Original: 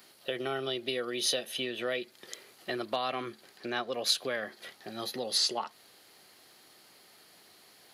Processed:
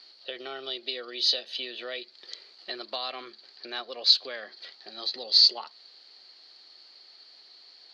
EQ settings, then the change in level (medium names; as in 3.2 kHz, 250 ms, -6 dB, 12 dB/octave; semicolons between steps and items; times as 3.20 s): high-pass 340 Hz 12 dB/octave; four-pole ladder low-pass 4.7 kHz, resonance 80%; +8.0 dB